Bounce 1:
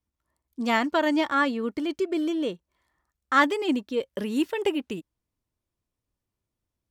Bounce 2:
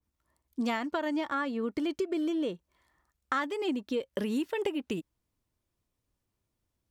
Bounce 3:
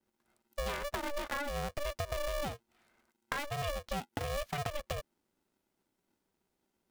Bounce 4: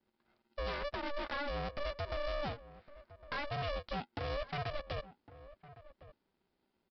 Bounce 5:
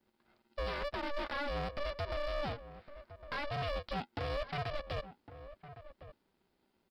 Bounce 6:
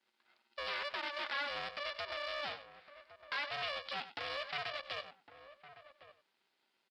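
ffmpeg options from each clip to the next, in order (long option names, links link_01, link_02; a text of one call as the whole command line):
ffmpeg -i in.wav -af "acompressor=threshold=-30dB:ratio=10,adynamicequalizer=threshold=0.00562:dfrequency=1800:dqfactor=0.7:tfrequency=1800:tqfactor=0.7:attack=5:release=100:ratio=0.375:range=2:mode=cutabove:tftype=highshelf,volume=2.5dB" out.wav
ffmpeg -i in.wav -af "acompressor=threshold=-33dB:ratio=6,aeval=exprs='val(0)*sgn(sin(2*PI*290*n/s))':channel_layout=same" out.wav
ffmpeg -i in.wav -filter_complex "[0:a]aresample=11025,asoftclip=type=hard:threshold=-35.5dB,aresample=44100,asplit=2[link_01][link_02];[link_02]adelay=1108,volume=-16dB,highshelf=frequency=4000:gain=-24.9[link_03];[link_01][link_03]amix=inputs=2:normalize=0,volume=1dB" out.wav
ffmpeg -i in.wav -af "alimiter=level_in=12dB:limit=-24dB:level=0:latency=1:release=41,volume=-12dB,asoftclip=type=hard:threshold=-37dB,volume=4dB" out.wav
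ffmpeg -i in.wav -af "bandpass=frequency=3100:width_type=q:width=0.7:csg=0,aecho=1:1:96:0.211,volume=5dB" out.wav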